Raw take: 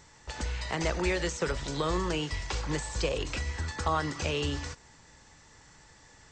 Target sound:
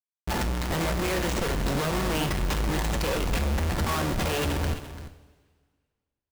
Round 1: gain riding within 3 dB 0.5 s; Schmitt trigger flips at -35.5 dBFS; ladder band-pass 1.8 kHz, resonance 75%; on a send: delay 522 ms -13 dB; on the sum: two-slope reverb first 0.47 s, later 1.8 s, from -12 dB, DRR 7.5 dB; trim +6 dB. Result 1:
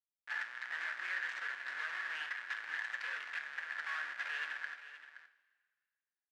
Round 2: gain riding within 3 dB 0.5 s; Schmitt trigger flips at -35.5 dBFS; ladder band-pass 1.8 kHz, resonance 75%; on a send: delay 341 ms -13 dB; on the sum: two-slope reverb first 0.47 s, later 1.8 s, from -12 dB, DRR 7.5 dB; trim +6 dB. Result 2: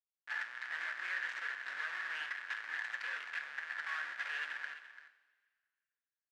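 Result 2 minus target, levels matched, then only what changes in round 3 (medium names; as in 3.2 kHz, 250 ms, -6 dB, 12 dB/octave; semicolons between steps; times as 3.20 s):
2 kHz band +10.0 dB
remove: ladder band-pass 1.8 kHz, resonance 75%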